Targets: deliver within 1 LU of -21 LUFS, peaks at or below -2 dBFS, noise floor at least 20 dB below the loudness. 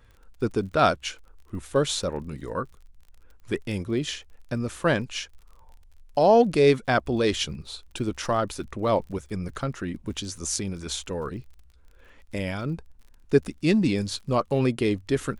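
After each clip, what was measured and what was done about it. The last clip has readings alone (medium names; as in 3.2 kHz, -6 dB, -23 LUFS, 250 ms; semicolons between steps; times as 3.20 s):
tick rate 38 per s; loudness -26.0 LUFS; peak level -7.5 dBFS; loudness target -21.0 LUFS
-> de-click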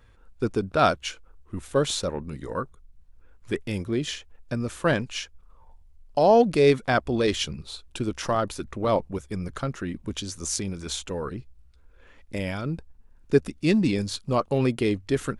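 tick rate 0 per s; loudness -26.0 LUFS; peak level -7.5 dBFS; loudness target -21.0 LUFS
-> trim +5 dB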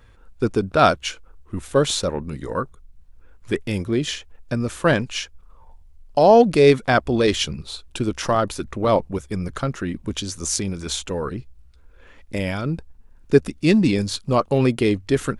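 loudness -21.0 LUFS; peak level -2.5 dBFS; noise floor -49 dBFS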